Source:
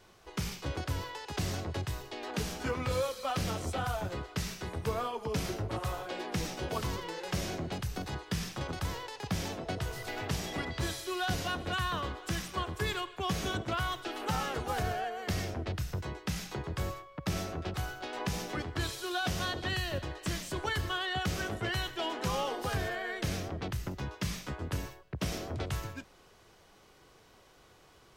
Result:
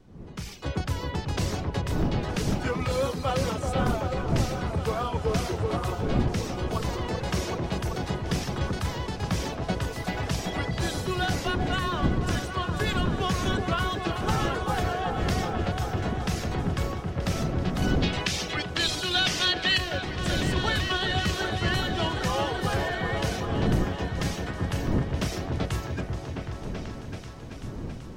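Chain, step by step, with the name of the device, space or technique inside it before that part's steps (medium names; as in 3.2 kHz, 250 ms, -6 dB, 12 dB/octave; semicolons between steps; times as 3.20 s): peaking EQ 13 kHz -6 dB 0.46 oct; reverb removal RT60 0.54 s; 17.82–19.78 s: frequency weighting D; delay with an opening low-pass 383 ms, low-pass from 750 Hz, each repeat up 1 oct, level -3 dB; smartphone video outdoors (wind noise 230 Hz -38 dBFS; level rider gain up to 14 dB; trim -8.5 dB; AAC 128 kbps 48 kHz)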